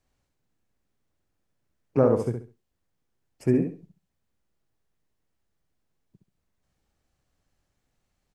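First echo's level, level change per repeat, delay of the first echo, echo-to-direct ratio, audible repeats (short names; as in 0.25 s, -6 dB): -6.0 dB, -12.0 dB, 67 ms, -5.5 dB, 3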